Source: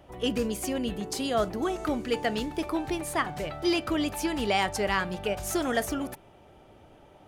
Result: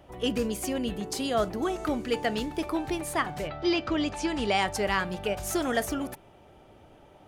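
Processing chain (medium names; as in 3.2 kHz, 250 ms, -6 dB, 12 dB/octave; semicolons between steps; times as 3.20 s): 3.47–4.64 s: low-pass 4.5 kHz -> 11 kHz 24 dB/octave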